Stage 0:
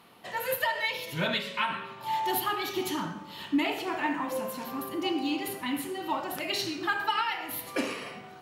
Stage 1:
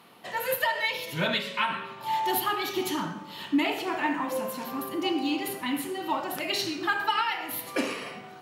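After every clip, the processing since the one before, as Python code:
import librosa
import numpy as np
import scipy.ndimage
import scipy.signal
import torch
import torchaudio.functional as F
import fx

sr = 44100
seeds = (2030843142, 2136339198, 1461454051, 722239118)

y = scipy.signal.sosfilt(scipy.signal.butter(2, 110.0, 'highpass', fs=sr, output='sos'), x)
y = F.gain(torch.from_numpy(y), 2.0).numpy()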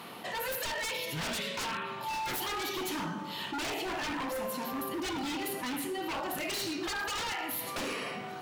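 y = 10.0 ** (-27.5 / 20.0) * (np.abs((x / 10.0 ** (-27.5 / 20.0) + 3.0) % 4.0 - 2.0) - 1.0)
y = fx.env_flatten(y, sr, amount_pct=50)
y = F.gain(torch.from_numpy(y), -3.0).numpy()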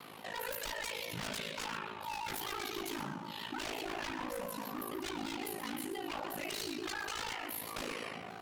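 y = x * np.sin(2.0 * np.pi * 27.0 * np.arange(len(x)) / sr)
y = y + 10.0 ** (-13.5 / 20.0) * np.pad(y, (int(128 * sr / 1000.0), 0))[:len(y)]
y = fx.vibrato_shape(y, sr, shape='saw_down', rate_hz=5.9, depth_cents=100.0)
y = F.gain(torch.from_numpy(y), -2.5).numpy()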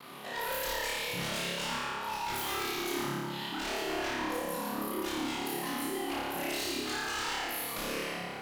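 y = fx.room_flutter(x, sr, wall_m=4.9, rt60_s=1.3)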